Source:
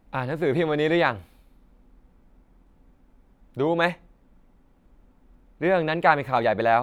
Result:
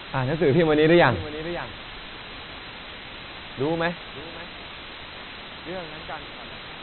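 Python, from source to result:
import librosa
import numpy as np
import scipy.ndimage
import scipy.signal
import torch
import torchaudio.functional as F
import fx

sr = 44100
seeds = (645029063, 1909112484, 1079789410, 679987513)

y = fx.fade_out_tail(x, sr, length_s=1.99)
y = fx.doppler_pass(y, sr, speed_mps=5, closest_m=3.4, pass_at_s=1.47)
y = fx.leveller(y, sr, passes=1)
y = fx.quant_dither(y, sr, seeds[0], bits=6, dither='triangular')
y = fx.low_shelf(y, sr, hz=160.0, db=7.5)
y = fx.hum_notches(y, sr, base_hz=50, count=3)
y = y + 10.0 ** (-16.5 / 20.0) * np.pad(y, (int(553 * sr / 1000.0), 0))[:len(y)]
y = fx.leveller(y, sr, passes=1)
y = fx.brickwall_lowpass(y, sr, high_hz=4100.0)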